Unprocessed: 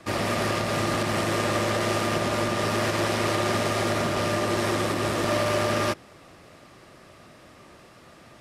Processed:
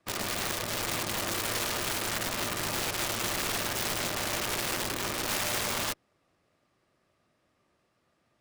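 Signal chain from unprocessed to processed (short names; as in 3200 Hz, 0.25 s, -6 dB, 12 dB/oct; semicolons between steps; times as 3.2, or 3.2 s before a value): added harmonics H 7 -18 dB, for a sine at -13.5 dBFS; wrapped overs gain 18.5 dB; gain -4.5 dB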